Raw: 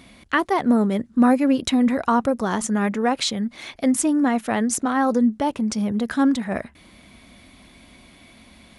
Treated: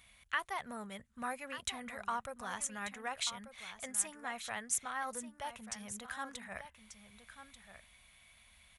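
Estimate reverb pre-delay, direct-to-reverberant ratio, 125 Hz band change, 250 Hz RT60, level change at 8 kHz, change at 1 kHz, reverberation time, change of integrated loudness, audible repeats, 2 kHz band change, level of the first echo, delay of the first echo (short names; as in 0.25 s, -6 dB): none, none, -25.5 dB, none, -8.5 dB, -16.5 dB, none, -18.5 dB, 1, -12.0 dB, -11.5 dB, 1.188 s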